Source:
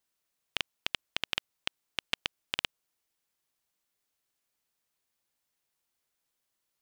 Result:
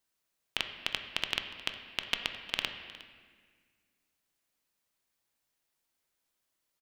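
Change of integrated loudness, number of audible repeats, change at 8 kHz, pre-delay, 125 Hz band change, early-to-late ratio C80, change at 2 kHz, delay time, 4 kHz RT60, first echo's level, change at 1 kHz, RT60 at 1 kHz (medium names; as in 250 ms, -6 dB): +0.5 dB, 1, 0.0 dB, 3 ms, +1.0 dB, 8.5 dB, +1.0 dB, 360 ms, 1.3 s, -19.5 dB, +1.0 dB, 1.5 s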